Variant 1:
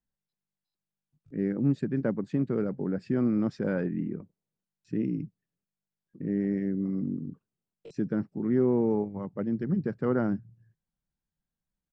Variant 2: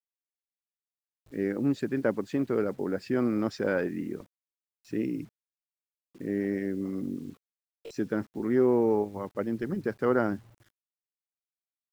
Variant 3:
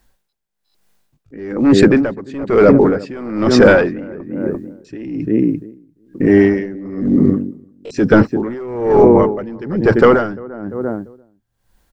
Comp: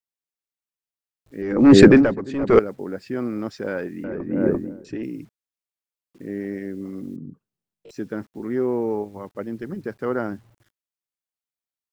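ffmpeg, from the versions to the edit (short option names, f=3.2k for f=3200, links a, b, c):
-filter_complex "[2:a]asplit=2[a][b];[1:a]asplit=4[c][d][e][f];[c]atrim=end=1.422[g];[a]atrim=start=1.418:end=2.592[h];[d]atrim=start=2.588:end=4.042[i];[b]atrim=start=4.038:end=5.032[j];[e]atrim=start=5.028:end=7.162[k];[0:a]atrim=start=7.158:end=7.892[l];[f]atrim=start=7.888[m];[g][h]acrossfade=d=0.004:c1=hsin:c2=hsin[n];[n][i]acrossfade=d=0.004:c1=hsin:c2=hsin[o];[o][j]acrossfade=d=0.004:c1=hsin:c2=hsin[p];[p][k]acrossfade=d=0.004:c1=hsin:c2=hsin[q];[q][l]acrossfade=d=0.004:c1=hsin:c2=hsin[r];[r][m]acrossfade=d=0.004:c1=hsin:c2=hsin"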